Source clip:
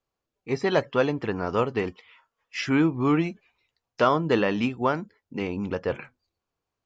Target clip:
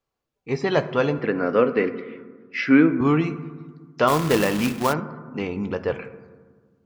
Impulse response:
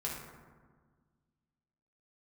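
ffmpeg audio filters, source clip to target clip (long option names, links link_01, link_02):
-filter_complex "[0:a]asettb=1/sr,asplit=3[link_01][link_02][link_03];[link_01]atrim=end=1.194[link_04];[link_02]atrim=start=1.19:end=3.01,asetpts=PTS-STARTPTS,afade=type=in:duration=0.004:curve=qsin,afade=type=out:start_time=1.816:duration=0.004:curve=qsin,highpass=190,equalizer=frequency=260:width_type=q:width=4:gain=10,equalizer=frequency=520:width_type=q:width=4:gain=8,equalizer=frequency=880:width_type=q:width=4:gain=-9,equalizer=frequency=1500:width_type=q:width=4:gain=6,equalizer=frequency=2100:width_type=q:width=4:gain=6,equalizer=frequency=3300:width_type=q:width=4:gain=-6,lowpass=frequency=4600:width=0.5412,lowpass=frequency=4600:width=1.3066[link_05];[link_03]atrim=start=3.006[link_06];[link_04][link_05]acrossfade=duration=0.004:curve1=hsin:curve2=qsin[link_07];[link_07][link_06]acrossfade=duration=0.004:curve1=qsin:curve2=hsin,asplit=2[link_08][link_09];[1:a]atrim=start_sample=2205,lowpass=6500[link_10];[link_09][link_10]afir=irnorm=-1:irlink=0,volume=-10dB[link_11];[link_08][link_11]amix=inputs=2:normalize=0,asplit=3[link_12][link_13][link_14];[link_12]afade=type=out:start_time=4.07:duration=0.02[link_15];[link_13]acrusher=bits=2:mode=log:mix=0:aa=0.000001,afade=type=in:start_time=4.07:duration=0.02,afade=type=out:start_time=4.92:duration=0.02[link_16];[link_14]afade=type=in:start_time=4.92:duration=0.02[link_17];[link_15][link_16][link_17]amix=inputs=3:normalize=0"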